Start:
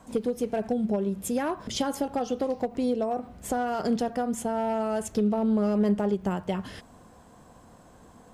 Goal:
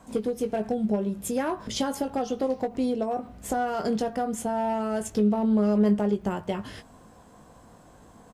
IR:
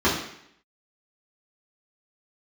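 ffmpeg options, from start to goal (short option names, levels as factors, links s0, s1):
-filter_complex "[0:a]asplit=2[s0][s1];[s1]adelay=19,volume=0.398[s2];[s0][s2]amix=inputs=2:normalize=0"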